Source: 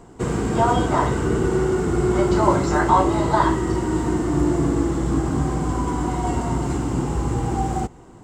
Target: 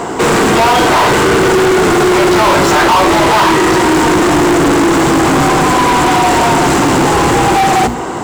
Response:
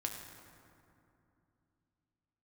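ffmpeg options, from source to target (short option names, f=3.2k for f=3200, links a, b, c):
-filter_complex "[0:a]bandreject=f=60:t=h:w=6,bandreject=f=120:t=h:w=6,bandreject=f=180:t=h:w=6,bandreject=f=240:t=h:w=6,bandreject=f=300:t=h:w=6,acrusher=bits=8:mode=log:mix=0:aa=0.000001,asplit=2[a][b];[b]highpass=f=720:p=1,volume=40dB,asoftclip=type=tanh:threshold=-2.5dB[c];[a][c]amix=inputs=2:normalize=0,lowpass=f=4.3k:p=1,volume=-6dB"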